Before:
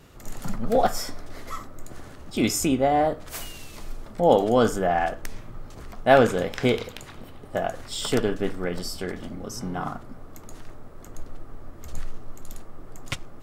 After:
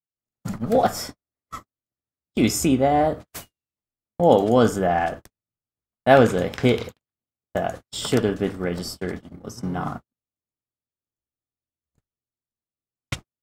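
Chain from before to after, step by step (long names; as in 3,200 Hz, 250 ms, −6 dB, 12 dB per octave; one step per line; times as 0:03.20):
high-pass filter 68 Hz 12 dB per octave
noise gate −34 dBFS, range −57 dB
low-shelf EQ 240 Hz +6 dB
level +1 dB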